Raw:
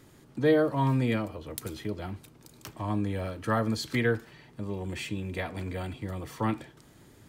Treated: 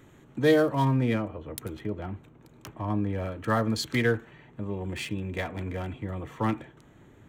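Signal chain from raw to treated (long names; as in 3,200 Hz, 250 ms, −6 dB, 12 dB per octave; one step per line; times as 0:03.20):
adaptive Wiener filter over 9 samples
high-shelf EQ 3,000 Hz +10.5 dB, from 0:00.85 −2.5 dB, from 0:03.18 +4 dB
level +1.5 dB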